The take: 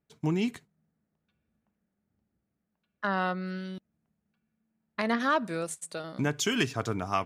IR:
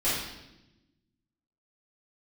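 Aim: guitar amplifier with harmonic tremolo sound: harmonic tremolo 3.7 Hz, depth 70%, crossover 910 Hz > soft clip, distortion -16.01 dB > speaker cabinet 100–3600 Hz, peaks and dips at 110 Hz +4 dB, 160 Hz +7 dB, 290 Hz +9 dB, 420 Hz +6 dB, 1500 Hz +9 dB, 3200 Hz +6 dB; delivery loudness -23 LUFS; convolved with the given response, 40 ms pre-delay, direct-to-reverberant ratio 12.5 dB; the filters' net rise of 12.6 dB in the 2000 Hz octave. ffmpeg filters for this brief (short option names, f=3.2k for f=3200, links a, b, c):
-filter_complex "[0:a]equalizer=f=2k:t=o:g=9,asplit=2[a][b];[1:a]atrim=start_sample=2205,adelay=40[c];[b][c]afir=irnorm=-1:irlink=0,volume=-23.5dB[d];[a][d]amix=inputs=2:normalize=0,acrossover=split=910[e][f];[e]aeval=exprs='val(0)*(1-0.7/2+0.7/2*cos(2*PI*3.7*n/s))':c=same[g];[f]aeval=exprs='val(0)*(1-0.7/2-0.7/2*cos(2*PI*3.7*n/s))':c=same[h];[g][h]amix=inputs=2:normalize=0,asoftclip=threshold=-18.5dB,highpass=100,equalizer=f=110:t=q:w=4:g=4,equalizer=f=160:t=q:w=4:g=7,equalizer=f=290:t=q:w=4:g=9,equalizer=f=420:t=q:w=4:g=6,equalizer=f=1.5k:t=q:w=4:g=9,equalizer=f=3.2k:t=q:w=4:g=6,lowpass=f=3.6k:w=0.5412,lowpass=f=3.6k:w=1.3066,volume=4dB"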